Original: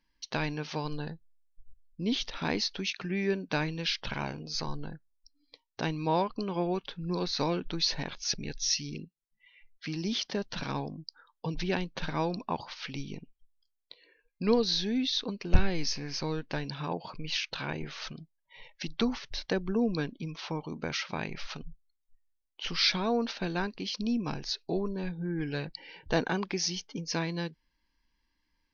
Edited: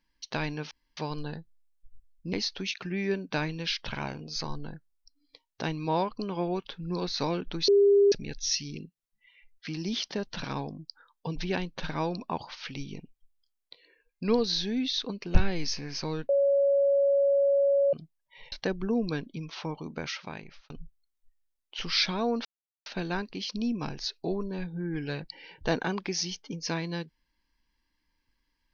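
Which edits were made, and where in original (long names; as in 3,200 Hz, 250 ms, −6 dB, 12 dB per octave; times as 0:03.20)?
0:00.71: splice in room tone 0.26 s
0:02.07–0:02.52: remove
0:07.87–0:08.31: beep over 402 Hz −16.5 dBFS
0:16.48–0:18.12: beep over 559 Hz −20 dBFS
0:18.71–0:19.38: remove
0:20.52–0:21.56: fade out equal-power
0:23.31: splice in silence 0.41 s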